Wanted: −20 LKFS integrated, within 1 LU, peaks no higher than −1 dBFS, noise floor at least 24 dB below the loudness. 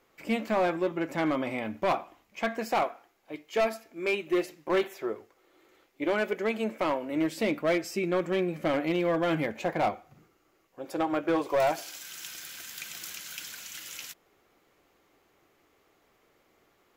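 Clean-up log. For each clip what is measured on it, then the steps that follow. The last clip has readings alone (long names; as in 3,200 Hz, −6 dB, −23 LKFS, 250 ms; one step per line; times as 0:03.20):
share of clipped samples 1.2%; peaks flattened at −20.5 dBFS; integrated loudness −30.0 LKFS; sample peak −20.5 dBFS; target loudness −20.0 LKFS
→ clipped peaks rebuilt −20.5 dBFS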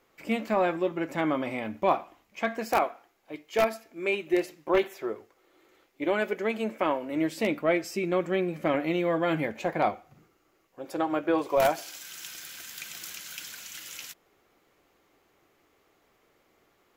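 share of clipped samples 0.0%; integrated loudness −29.0 LKFS; sample peak −11.5 dBFS; target loudness −20.0 LKFS
→ level +9 dB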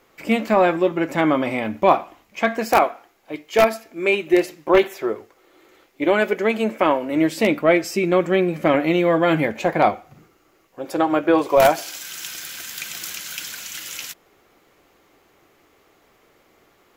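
integrated loudness −20.0 LKFS; sample peak −2.5 dBFS; background noise floor −59 dBFS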